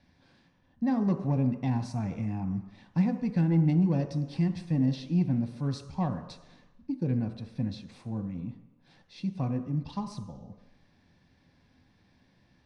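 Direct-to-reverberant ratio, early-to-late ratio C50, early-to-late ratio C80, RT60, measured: 6.0 dB, 10.0 dB, 11.5 dB, 1.0 s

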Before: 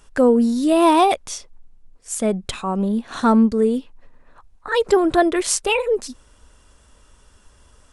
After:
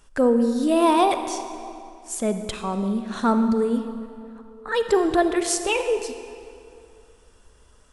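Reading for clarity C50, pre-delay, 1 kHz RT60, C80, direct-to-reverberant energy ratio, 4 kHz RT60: 8.5 dB, 35 ms, 2.5 s, 9.0 dB, 8.0 dB, 1.9 s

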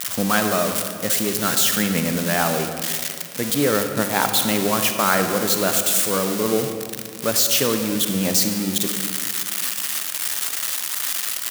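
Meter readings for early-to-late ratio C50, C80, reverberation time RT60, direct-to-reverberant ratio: 6.5 dB, 7.5 dB, 2.0 s, 6.0 dB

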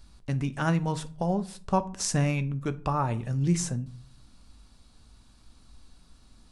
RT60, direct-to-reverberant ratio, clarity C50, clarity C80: 0.45 s, 11.0 dB, 19.0 dB, 24.0 dB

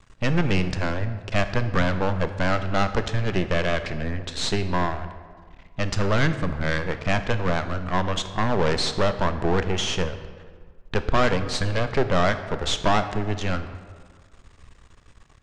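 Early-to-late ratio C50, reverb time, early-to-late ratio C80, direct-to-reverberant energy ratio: 11.0 dB, 1.7 s, 12.5 dB, 9.5 dB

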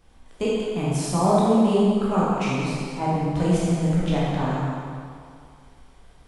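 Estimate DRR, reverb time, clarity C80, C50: -7.5 dB, 2.2 s, -1.0 dB, -3.5 dB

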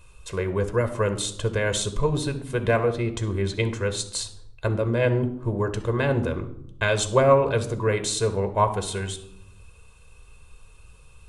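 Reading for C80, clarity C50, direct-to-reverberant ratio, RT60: 15.5 dB, 12.0 dB, 8.5 dB, 0.75 s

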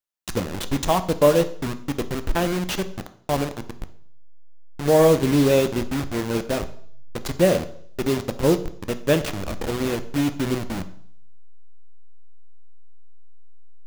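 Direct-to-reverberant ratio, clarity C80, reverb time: 10.0 dB, 18.0 dB, 0.60 s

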